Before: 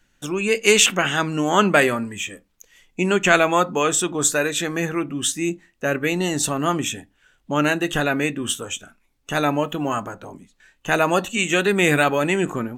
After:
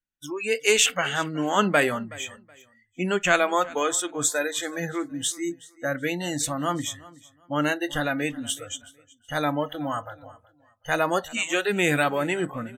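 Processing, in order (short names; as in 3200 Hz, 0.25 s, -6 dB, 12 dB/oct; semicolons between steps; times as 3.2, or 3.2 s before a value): spectral noise reduction 27 dB; feedback echo 0.373 s, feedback 24%, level -21 dB; gain -4.5 dB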